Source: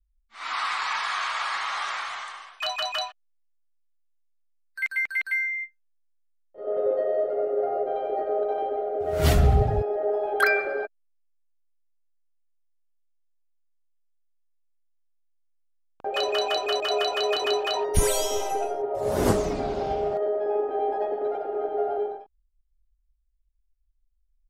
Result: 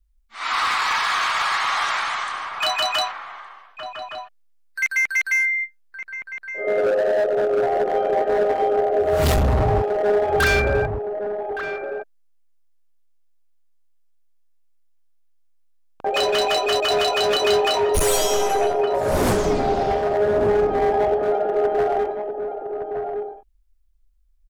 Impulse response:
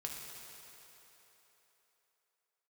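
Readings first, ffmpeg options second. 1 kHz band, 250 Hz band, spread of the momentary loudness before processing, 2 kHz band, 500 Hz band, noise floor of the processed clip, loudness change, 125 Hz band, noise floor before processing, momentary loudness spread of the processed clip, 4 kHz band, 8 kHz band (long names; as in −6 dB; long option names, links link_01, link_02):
+7.0 dB, +5.5 dB, 9 LU, +6.0 dB, +6.5 dB, −57 dBFS, +5.5 dB, +2.0 dB, −69 dBFS, 12 LU, +6.0 dB, +5.5 dB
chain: -filter_complex "[0:a]volume=23.5dB,asoftclip=hard,volume=-23.5dB,asplit=2[link_01][link_02];[link_02]adelay=1166,volume=-6dB,highshelf=frequency=4000:gain=-26.2[link_03];[link_01][link_03]amix=inputs=2:normalize=0,volume=7.5dB"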